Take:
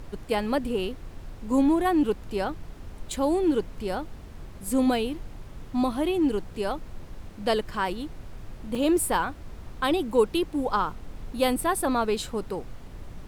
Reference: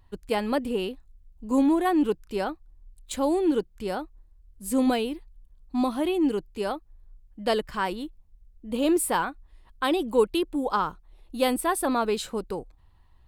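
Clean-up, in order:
repair the gap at 0:08.75, 3.5 ms
noise reduction from a noise print 13 dB

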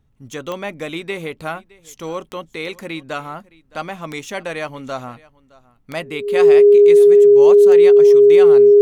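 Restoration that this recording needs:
click removal
notch filter 410 Hz, Q 30
echo removal 615 ms −23 dB

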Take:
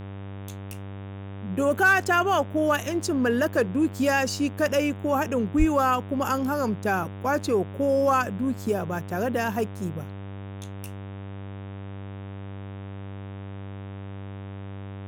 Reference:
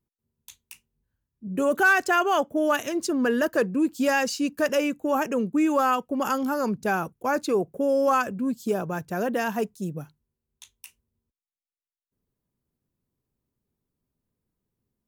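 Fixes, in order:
hum removal 98.2 Hz, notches 38
0:05.58–0:05.70: high-pass filter 140 Hz 24 dB per octave

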